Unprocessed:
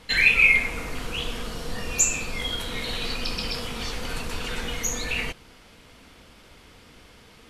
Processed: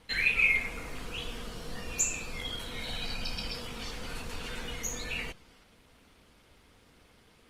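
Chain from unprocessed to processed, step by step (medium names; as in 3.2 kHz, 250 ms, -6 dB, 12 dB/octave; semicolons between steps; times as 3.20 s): 2.78–3.47 s: comb 1.3 ms, depth 40%; trim -8 dB; Opus 24 kbps 48 kHz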